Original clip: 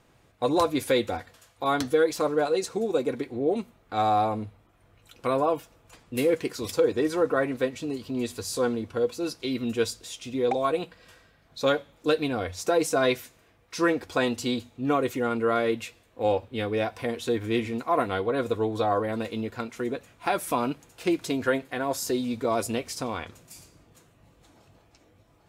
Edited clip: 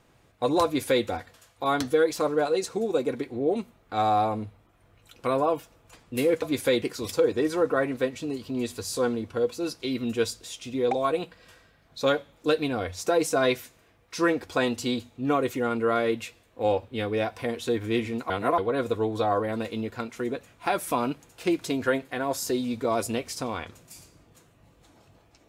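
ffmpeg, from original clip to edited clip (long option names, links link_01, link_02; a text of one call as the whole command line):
ffmpeg -i in.wav -filter_complex "[0:a]asplit=5[link_01][link_02][link_03][link_04][link_05];[link_01]atrim=end=6.422[link_06];[link_02]atrim=start=0.648:end=1.052[link_07];[link_03]atrim=start=6.418:end=17.902[link_08];[link_04]atrim=start=17.898:end=18.182,asetpts=PTS-STARTPTS,areverse[link_09];[link_05]atrim=start=18.178[link_10];[link_06][link_07]acrossfade=duration=0.004:curve1=hsin:curve2=hsin[link_11];[link_11][link_08]acrossfade=duration=0.004:curve1=hsin:curve2=hsin[link_12];[link_12][link_09]acrossfade=duration=0.004:curve1=hsin:curve2=hsin[link_13];[link_13][link_10]acrossfade=duration=0.004:curve1=hsin:curve2=hsin" out.wav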